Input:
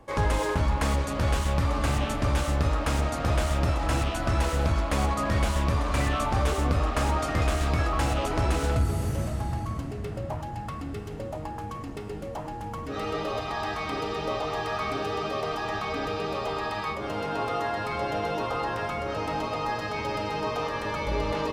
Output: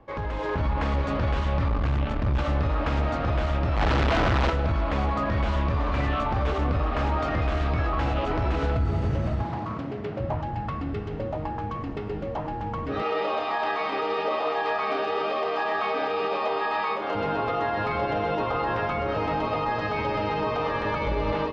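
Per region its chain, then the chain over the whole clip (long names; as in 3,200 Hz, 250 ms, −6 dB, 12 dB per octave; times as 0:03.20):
0:01.68–0:02.39: low-shelf EQ 150 Hz +8.5 dB + tube saturation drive 20 dB, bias 0.75
0:03.76–0:04.50: notch filter 2,600 Hz + comparator with hysteresis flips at −44 dBFS
0:09.44–0:10.20: high-pass filter 160 Hz + highs frequency-modulated by the lows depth 0.31 ms
0:13.02–0:17.15: high-pass filter 370 Hz + double-tracking delay 30 ms −3.5 dB
whole clip: Bessel low-pass filter 3,000 Hz, order 4; brickwall limiter −22 dBFS; automatic gain control gain up to 6 dB; level −1.5 dB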